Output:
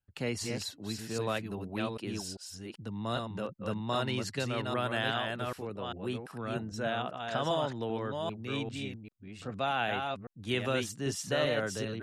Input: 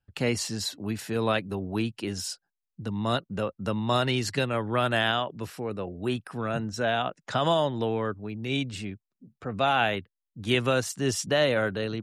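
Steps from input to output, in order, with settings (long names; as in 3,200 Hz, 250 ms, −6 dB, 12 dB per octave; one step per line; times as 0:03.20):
delay that plays each chunk backwards 395 ms, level −4 dB
level −7.5 dB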